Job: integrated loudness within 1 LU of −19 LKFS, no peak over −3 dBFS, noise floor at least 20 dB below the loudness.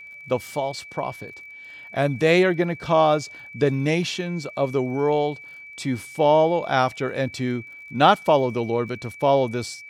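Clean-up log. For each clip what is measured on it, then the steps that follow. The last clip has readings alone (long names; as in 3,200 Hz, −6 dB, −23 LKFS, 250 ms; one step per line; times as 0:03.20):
crackle rate 41 per second; interfering tone 2,300 Hz; level of the tone −39 dBFS; integrated loudness −22.5 LKFS; sample peak −3.5 dBFS; target loudness −19.0 LKFS
→ click removal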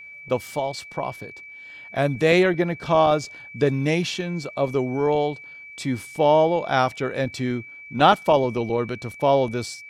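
crackle rate 0.10 per second; interfering tone 2,300 Hz; level of the tone −39 dBFS
→ notch filter 2,300 Hz, Q 30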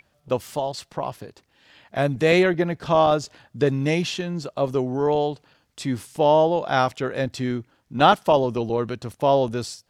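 interfering tone none found; integrated loudness −22.5 LKFS; sample peak −3.0 dBFS; target loudness −19.0 LKFS
→ level +3.5 dB
brickwall limiter −3 dBFS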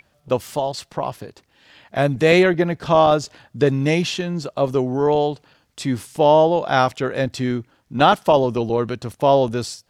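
integrated loudness −19.5 LKFS; sample peak −3.0 dBFS; background noise floor −64 dBFS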